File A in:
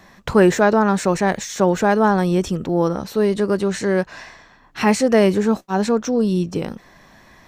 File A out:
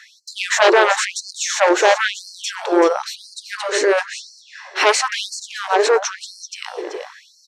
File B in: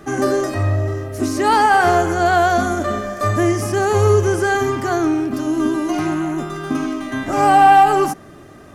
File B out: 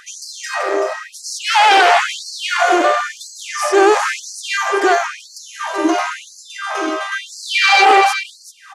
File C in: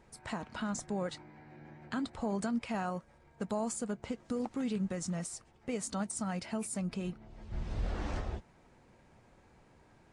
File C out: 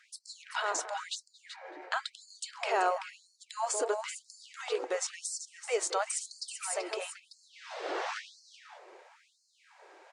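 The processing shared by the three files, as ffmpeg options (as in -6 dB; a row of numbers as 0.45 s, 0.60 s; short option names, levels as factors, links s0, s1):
-filter_complex "[0:a]asplit=2[s0][s1];[s1]adelay=225,lowpass=f=1200:p=1,volume=0.299,asplit=2[s2][s3];[s3]adelay=225,lowpass=f=1200:p=1,volume=0.38,asplit=2[s4][s5];[s5]adelay=225,lowpass=f=1200:p=1,volume=0.38,asplit=2[s6][s7];[s7]adelay=225,lowpass=f=1200:p=1,volume=0.38[s8];[s2][s4][s6][s8]amix=inputs=4:normalize=0[s9];[s0][s9]amix=inputs=2:normalize=0,aeval=exprs='0.891*sin(PI/2*3.55*val(0)/0.891)':c=same,highpass=140,lowpass=7400,asplit=2[s10][s11];[s11]aecho=0:1:383:0.335[s12];[s10][s12]amix=inputs=2:normalize=0,afftfilt=real='re*gte(b*sr/1024,300*pow(4200/300,0.5+0.5*sin(2*PI*0.98*pts/sr)))':imag='im*gte(b*sr/1024,300*pow(4200/300,0.5+0.5*sin(2*PI*0.98*pts/sr)))':win_size=1024:overlap=0.75,volume=0.531"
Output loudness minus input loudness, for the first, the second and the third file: +0.5 LU, +1.5 LU, +3.0 LU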